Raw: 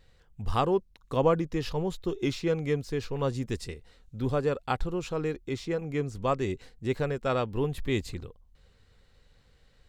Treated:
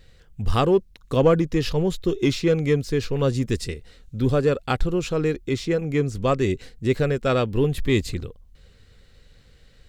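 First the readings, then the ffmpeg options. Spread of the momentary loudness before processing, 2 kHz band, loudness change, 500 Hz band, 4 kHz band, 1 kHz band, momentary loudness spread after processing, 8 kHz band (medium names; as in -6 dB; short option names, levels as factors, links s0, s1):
9 LU, +7.0 dB, +7.5 dB, +7.0 dB, +8.0 dB, +3.0 dB, 7 LU, +8.5 dB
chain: -filter_complex "[0:a]equalizer=f=910:t=o:w=0.88:g=-7.5,asplit=2[s0][s1];[s1]asoftclip=type=hard:threshold=0.0631,volume=0.316[s2];[s0][s2]amix=inputs=2:normalize=0,volume=2.11"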